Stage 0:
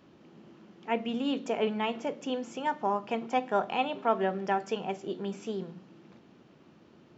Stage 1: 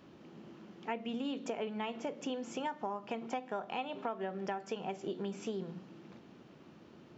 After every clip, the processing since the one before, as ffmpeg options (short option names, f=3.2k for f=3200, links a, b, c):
-af "acompressor=threshold=-35dB:ratio=10,volume=1dB"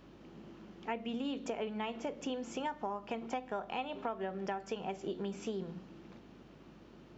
-af "aeval=exprs='val(0)+0.000562*(sin(2*PI*50*n/s)+sin(2*PI*2*50*n/s)/2+sin(2*PI*3*50*n/s)/3+sin(2*PI*4*50*n/s)/4+sin(2*PI*5*50*n/s)/5)':c=same"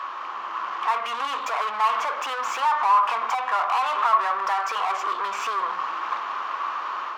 -filter_complex "[0:a]asplit=2[a][b];[b]highpass=f=720:p=1,volume=34dB,asoftclip=type=tanh:threshold=-22.5dB[c];[a][c]amix=inputs=2:normalize=0,lowpass=f=1.7k:p=1,volume=-6dB,dynaudnorm=f=470:g=3:m=4dB,highpass=f=1.1k:t=q:w=7.7"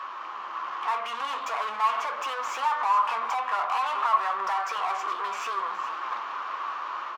-af "flanger=delay=7.1:depth=7.6:regen=58:speed=0.5:shape=triangular,aecho=1:1:417:0.211"